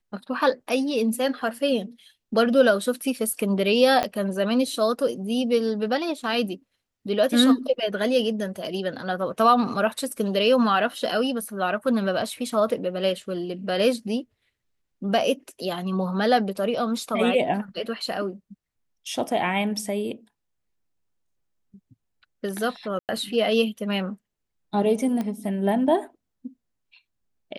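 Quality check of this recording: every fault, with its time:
4.03 pop -9 dBFS
22.99–23.09 gap 98 ms
25.21 pop -17 dBFS

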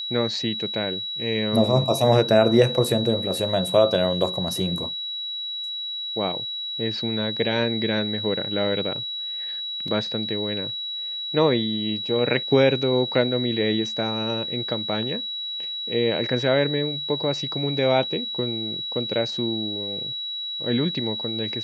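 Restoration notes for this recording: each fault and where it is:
tone 3900 Hz -28 dBFS
9.88 gap 3 ms

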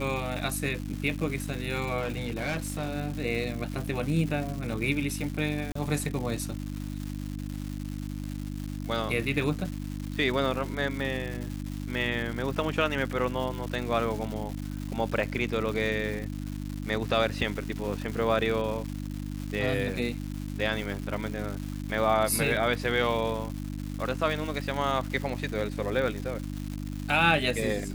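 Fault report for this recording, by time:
crackle 340/s -34 dBFS
hum 50 Hz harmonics 6 -35 dBFS
1.99–2.97 clipped -26.5 dBFS
5.72–5.75 gap 34 ms

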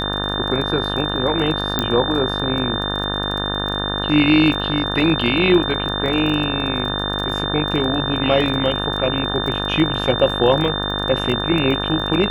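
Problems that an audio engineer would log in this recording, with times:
buzz 50 Hz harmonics 36 -25 dBFS
crackle 22/s -25 dBFS
tone 3600 Hz -24 dBFS
1.79 pop -4 dBFS

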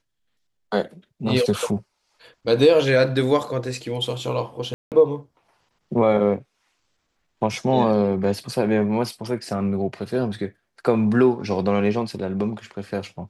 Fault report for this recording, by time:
4.74–4.92 gap 0.178 s

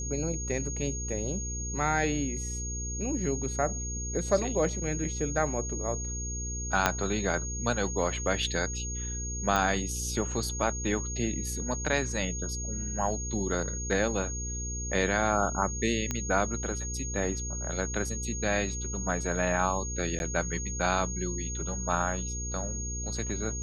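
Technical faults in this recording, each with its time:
hum 60 Hz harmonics 8 -36 dBFS
tone 6600 Hz -36 dBFS
6.86 pop -6 dBFS
9.56 pop -14 dBFS
16.11 pop -15 dBFS
20.19–20.2 gap 11 ms

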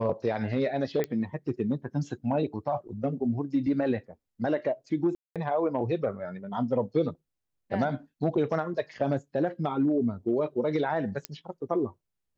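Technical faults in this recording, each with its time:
1.04 pop -16 dBFS
5.15–5.36 gap 0.207 s
11.25 pop -14 dBFS

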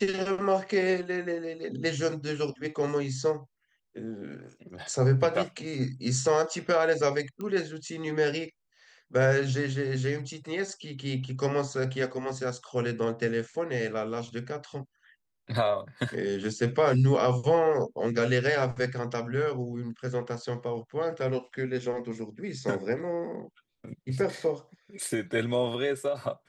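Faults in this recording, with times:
7.41 pop -25 dBFS

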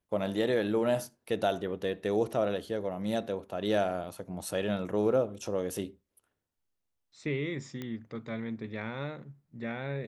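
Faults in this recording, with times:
7.82 pop -24 dBFS

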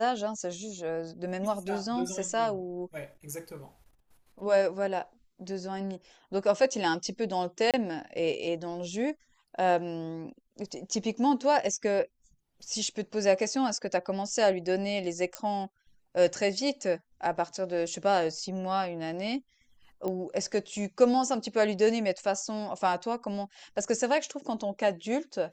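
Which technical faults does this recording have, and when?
7.71–7.74 gap 27 ms
15.35 pop -16 dBFS
20.08 pop -21 dBFS

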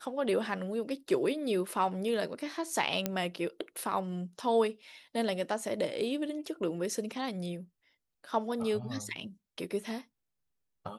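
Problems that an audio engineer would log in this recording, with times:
3.06 pop -14 dBFS

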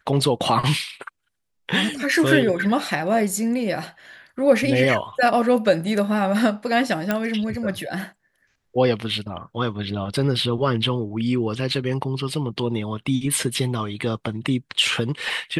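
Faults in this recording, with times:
7.11 pop -8 dBFS

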